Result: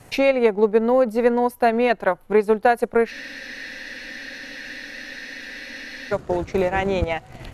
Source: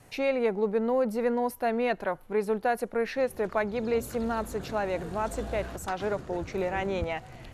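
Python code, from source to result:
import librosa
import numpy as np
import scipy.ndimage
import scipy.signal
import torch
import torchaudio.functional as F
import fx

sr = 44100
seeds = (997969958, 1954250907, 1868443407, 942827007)

y = fx.transient(x, sr, attack_db=4, sustain_db=-7)
y = fx.spec_freeze(y, sr, seeds[0], at_s=3.14, hold_s=2.99)
y = F.gain(torch.from_numpy(y), 8.0).numpy()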